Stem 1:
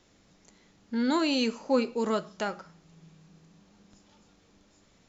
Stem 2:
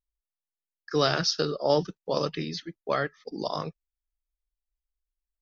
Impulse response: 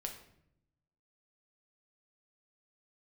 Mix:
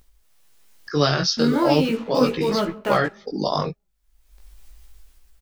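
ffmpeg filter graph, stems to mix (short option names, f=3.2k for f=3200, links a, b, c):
-filter_complex "[0:a]lowpass=f=3.2k:w=0.5412,lowpass=f=3.2k:w=1.3066,acrusher=bits=6:mix=0:aa=0.5,adelay=450,volume=-2.5dB,asplit=2[a][b];[b]volume=-4.5dB[c];[1:a]acompressor=mode=upward:threshold=-36dB:ratio=2.5,volume=1dB[d];[2:a]atrim=start_sample=2205[e];[c][e]afir=irnorm=-1:irlink=0[f];[a][d][f]amix=inputs=3:normalize=0,lowshelf=f=190:g=5,dynaudnorm=f=180:g=7:m=12dB,flanger=delay=15:depth=6.7:speed=0.39"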